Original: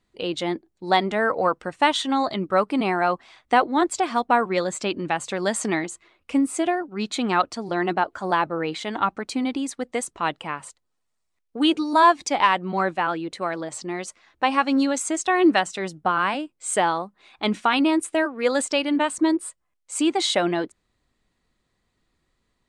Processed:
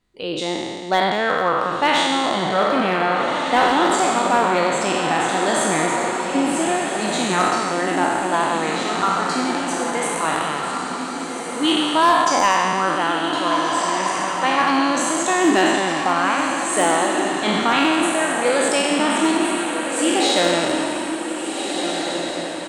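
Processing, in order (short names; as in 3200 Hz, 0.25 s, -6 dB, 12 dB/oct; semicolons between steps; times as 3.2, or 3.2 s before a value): spectral trails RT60 2.01 s; on a send: diffused feedback echo 1.631 s, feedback 45%, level -5 dB; on the sum: hard clip -7 dBFS, distortion -27 dB; echo 0.249 s -24 dB; gain -1.5 dB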